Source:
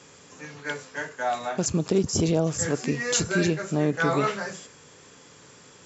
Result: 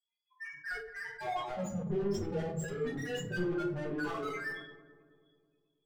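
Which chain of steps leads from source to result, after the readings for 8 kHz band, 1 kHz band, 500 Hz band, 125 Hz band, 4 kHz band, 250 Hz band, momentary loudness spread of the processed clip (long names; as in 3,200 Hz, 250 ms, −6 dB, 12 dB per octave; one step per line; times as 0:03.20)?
can't be measured, −9.5 dB, −9.5 dB, −11.5 dB, −14.0 dB, −10.5 dB, 9 LU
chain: spectral dynamics exaggerated over time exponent 3
mains-hum notches 50/100/150/200/250/300/350/400/450/500 Hz
in parallel at +2 dB: downward compressor, threshold −39 dBFS, peak gain reduction 17 dB
on the sum: low-pass filter 2,800 Hz 6 dB per octave
amplitude tremolo 7.4 Hz, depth 65%
hard clipping −26.5 dBFS, distortion −12 dB
spectral peaks only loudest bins 4
soft clipping −39.5 dBFS, distortion −7 dB
mid-hump overdrive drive 26 dB, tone 2,100 Hz, clips at −39.5 dBFS
feedback echo with a low-pass in the loop 215 ms, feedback 59%, low-pass 1,200 Hz, level −13.5 dB
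rectangular room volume 45 cubic metres, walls mixed, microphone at 1.3 metres
level that may fall only so fast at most 80 dB per second
level −1 dB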